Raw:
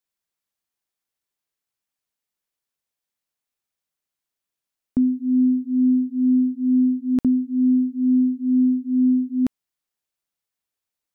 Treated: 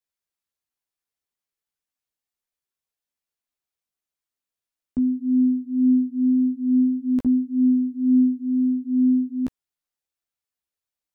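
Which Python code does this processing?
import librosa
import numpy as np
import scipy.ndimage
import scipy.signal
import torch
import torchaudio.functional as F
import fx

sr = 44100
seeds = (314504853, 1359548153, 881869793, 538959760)

y = fx.chorus_voices(x, sr, voices=6, hz=0.59, base_ms=14, depth_ms=2.2, mix_pct=40)
y = F.gain(torch.from_numpy(y), -1.5).numpy()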